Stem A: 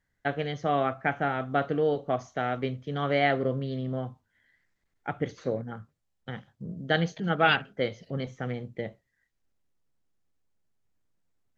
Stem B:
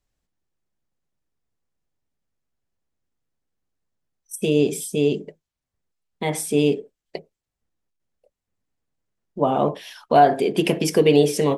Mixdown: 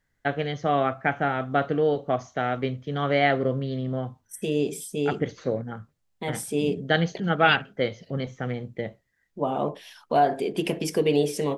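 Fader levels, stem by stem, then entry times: +3.0 dB, -6.5 dB; 0.00 s, 0.00 s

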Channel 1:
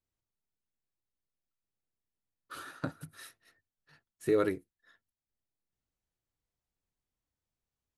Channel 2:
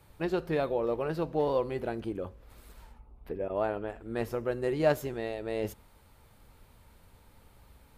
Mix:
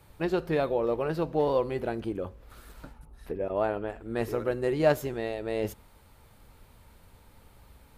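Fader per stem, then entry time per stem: -12.0 dB, +2.5 dB; 0.00 s, 0.00 s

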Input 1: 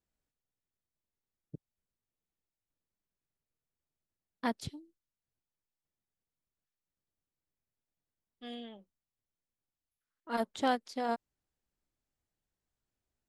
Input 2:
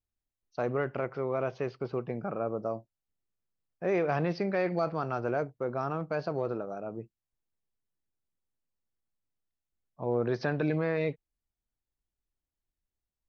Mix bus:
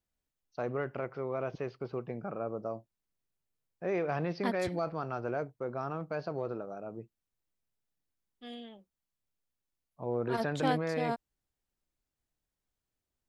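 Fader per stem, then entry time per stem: -1.0 dB, -4.0 dB; 0.00 s, 0.00 s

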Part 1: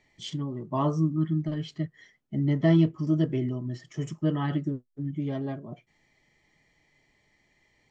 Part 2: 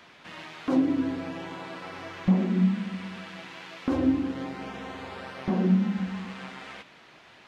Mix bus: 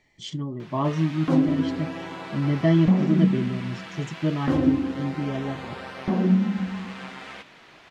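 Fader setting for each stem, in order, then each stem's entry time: +1.5 dB, +2.5 dB; 0.00 s, 0.60 s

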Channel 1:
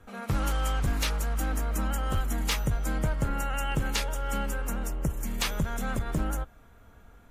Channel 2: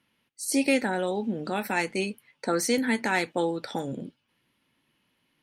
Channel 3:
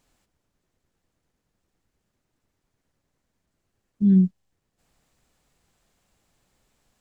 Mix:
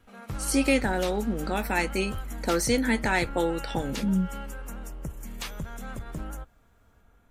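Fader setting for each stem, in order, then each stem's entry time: -7.0 dB, +0.5 dB, -8.5 dB; 0.00 s, 0.00 s, 0.00 s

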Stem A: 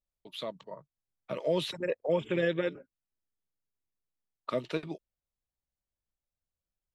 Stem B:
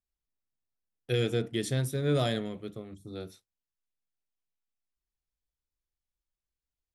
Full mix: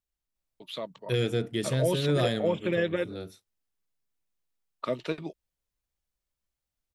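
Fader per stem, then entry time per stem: +1.5 dB, +1.0 dB; 0.35 s, 0.00 s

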